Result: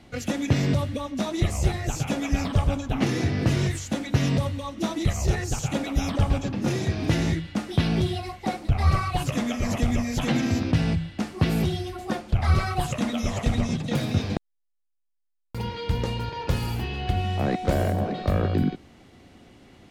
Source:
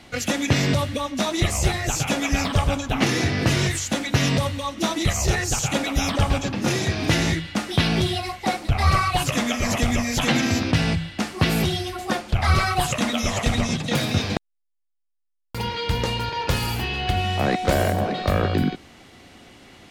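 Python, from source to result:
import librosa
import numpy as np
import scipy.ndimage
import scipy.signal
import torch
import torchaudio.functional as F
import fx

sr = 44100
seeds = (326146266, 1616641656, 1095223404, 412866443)

y = fx.tilt_shelf(x, sr, db=4.5, hz=660.0)
y = y * librosa.db_to_amplitude(-5.0)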